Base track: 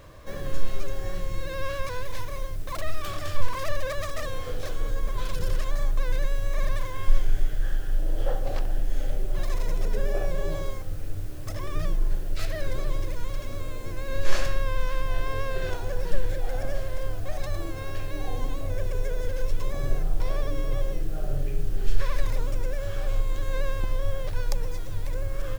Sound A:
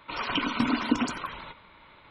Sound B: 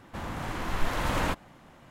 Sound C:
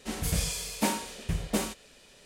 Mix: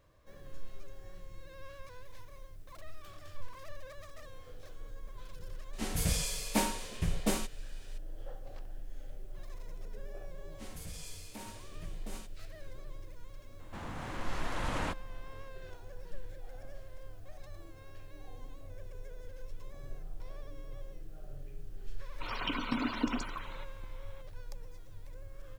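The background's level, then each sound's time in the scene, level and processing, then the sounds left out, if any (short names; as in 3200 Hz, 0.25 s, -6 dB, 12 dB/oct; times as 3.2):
base track -18.5 dB
5.73 add C -2.5 dB
10.53 add C -13.5 dB, fades 0.10 s + limiter -22.5 dBFS
13.59 add B -7 dB + LPF 11000 Hz 24 dB/oct
22.12 add A -7.5 dB + bit-crush 11-bit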